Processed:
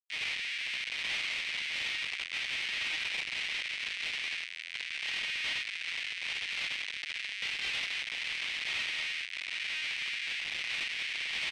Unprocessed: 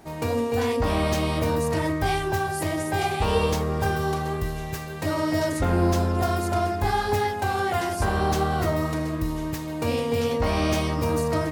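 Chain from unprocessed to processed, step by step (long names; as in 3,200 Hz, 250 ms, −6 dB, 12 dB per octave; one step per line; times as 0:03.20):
double-tracking delay 48 ms −5 dB
automatic gain control gain up to 4 dB
on a send: repeating echo 142 ms, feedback 56%, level −24 dB
on the sum: downward compressor 16 to 1, threshold −20 dBFS, peak gain reduction 9.5 dB
rectangular room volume 230 cubic metres, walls furnished, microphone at 6.1 metres
comparator with hysteresis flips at −15.5 dBFS
Butterworth high-pass 2,100 Hz 48 dB per octave
soft clipping −25 dBFS, distortion −7 dB
low-pass filter 3,800 Hz 12 dB per octave
level −2.5 dB
MP3 96 kbit/s 44,100 Hz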